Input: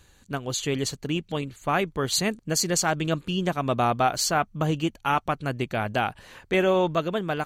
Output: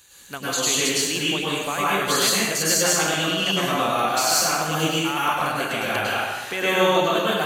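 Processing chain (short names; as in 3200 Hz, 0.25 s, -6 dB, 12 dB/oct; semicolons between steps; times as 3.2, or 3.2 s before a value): tilt +3.5 dB/oct; limiter -16 dBFS, peak gain reduction 13 dB; plate-style reverb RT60 1.3 s, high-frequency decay 0.75×, pre-delay 90 ms, DRR -7.5 dB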